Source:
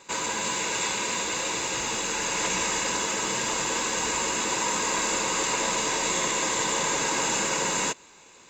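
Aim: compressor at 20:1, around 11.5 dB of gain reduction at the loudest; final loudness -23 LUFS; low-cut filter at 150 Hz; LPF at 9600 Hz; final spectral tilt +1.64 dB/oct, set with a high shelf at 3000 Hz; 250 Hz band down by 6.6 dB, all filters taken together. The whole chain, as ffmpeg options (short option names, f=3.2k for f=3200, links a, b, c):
-af "highpass=150,lowpass=9.6k,equalizer=f=250:t=o:g=-9,highshelf=f=3k:g=8.5,acompressor=threshold=-30dB:ratio=20,volume=8dB"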